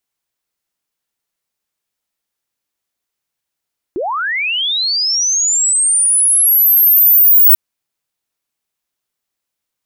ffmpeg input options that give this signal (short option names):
-f lavfi -i "aevalsrc='pow(10,(-16.5+12.5*t/3.59)/20)*sin(2*PI*(310*t+15690*t*t/(2*3.59)))':d=3.59:s=44100"